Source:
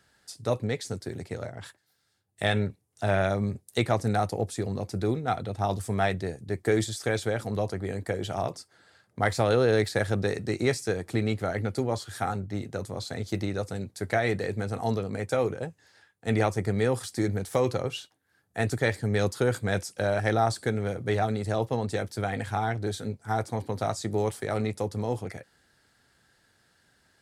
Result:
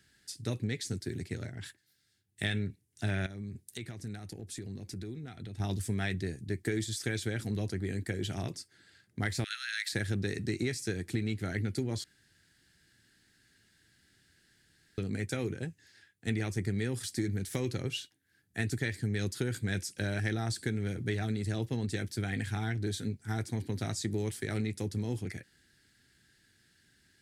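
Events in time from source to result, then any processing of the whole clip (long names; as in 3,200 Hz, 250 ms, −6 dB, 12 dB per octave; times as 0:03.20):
0:03.26–0:05.60: downward compressor 4 to 1, threshold −38 dBFS
0:09.44–0:09.93: Butterworth high-pass 1,300 Hz 96 dB per octave
0:12.04–0:14.98: fill with room tone
whole clip: flat-topped bell 780 Hz −14 dB; downward compressor, threshold −28 dBFS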